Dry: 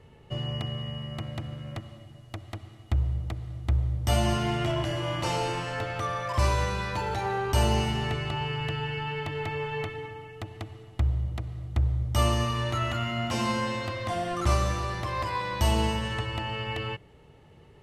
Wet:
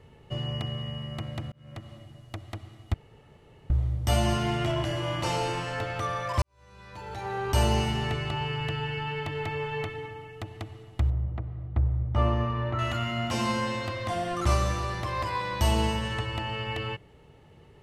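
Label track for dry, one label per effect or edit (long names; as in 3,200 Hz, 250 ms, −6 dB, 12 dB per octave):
1.520000	1.930000	fade in linear
2.940000	3.700000	fill with room tone
6.420000	7.530000	fade in quadratic
11.100000	12.790000	low-pass filter 1,600 Hz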